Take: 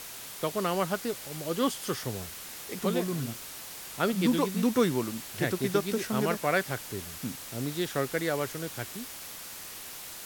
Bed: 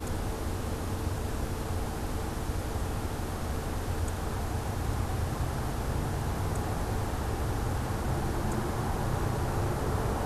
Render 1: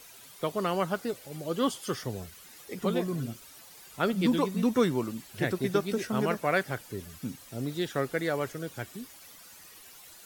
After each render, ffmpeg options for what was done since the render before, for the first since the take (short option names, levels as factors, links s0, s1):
-af "afftdn=nr=12:nf=-43"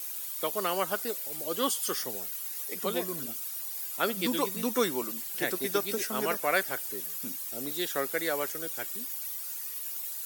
-af "highpass=210,aemphasis=mode=production:type=bsi"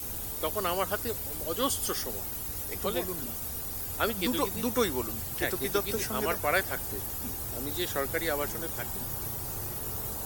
-filter_complex "[1:a]volume=0.282[s0];[0:a][s0]amix=inputs=2:normalize=0"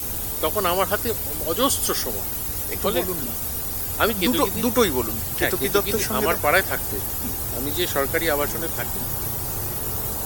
-af "volume=2.66"